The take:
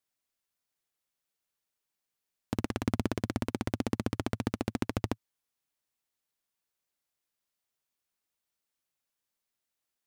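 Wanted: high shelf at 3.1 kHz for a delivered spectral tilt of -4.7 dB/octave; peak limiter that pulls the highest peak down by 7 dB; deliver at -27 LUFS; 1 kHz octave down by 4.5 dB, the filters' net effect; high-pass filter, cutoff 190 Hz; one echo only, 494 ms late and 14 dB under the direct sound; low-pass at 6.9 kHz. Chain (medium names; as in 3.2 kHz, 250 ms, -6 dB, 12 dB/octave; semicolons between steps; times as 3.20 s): high-pass 190 Hz; low-pass 6.9 kHz; peaking EQ 1 kHz -7 dB; treble shelf 3.1 kHz +7 dB; peak limiter -19 dBFS; delay 494 ms -14 dB; trim +14.5 dB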